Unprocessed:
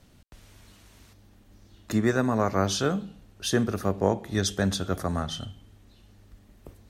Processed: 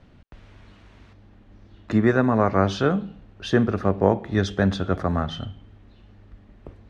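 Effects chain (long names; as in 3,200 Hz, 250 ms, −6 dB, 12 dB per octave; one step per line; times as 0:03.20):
low-pass filter 2,600 Hz 12 dB per octave
level +5 dB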